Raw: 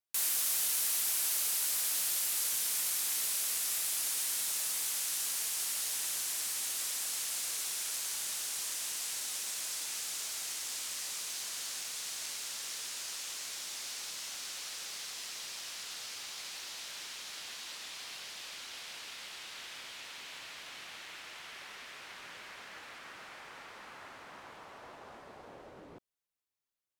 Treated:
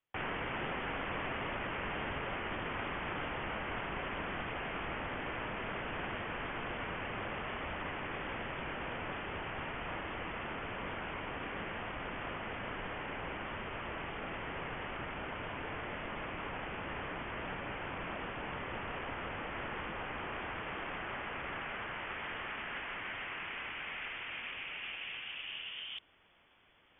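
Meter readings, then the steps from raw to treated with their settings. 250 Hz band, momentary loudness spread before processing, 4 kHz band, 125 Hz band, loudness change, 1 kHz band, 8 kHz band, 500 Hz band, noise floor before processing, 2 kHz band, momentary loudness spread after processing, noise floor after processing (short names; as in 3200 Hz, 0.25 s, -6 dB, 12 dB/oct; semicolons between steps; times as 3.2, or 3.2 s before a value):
+17.0 dB, 19 LU, -7.0 dB, n/a, -6.0 dB, +11.0 dB, under -40 dB, +14.0 dB, -53 dBFS, +6.5 dB, 3 LU, -45 dBFS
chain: inverted band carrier 3400 Hz; reverse; upward compressor, threshold -55 dBFS; reverse; gain +8 dB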